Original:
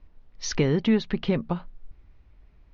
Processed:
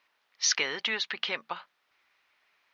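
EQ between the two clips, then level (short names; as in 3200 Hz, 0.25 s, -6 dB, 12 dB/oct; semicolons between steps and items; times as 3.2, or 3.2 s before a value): HPF 1400 Hz 12 dB/oct; +7.0 dB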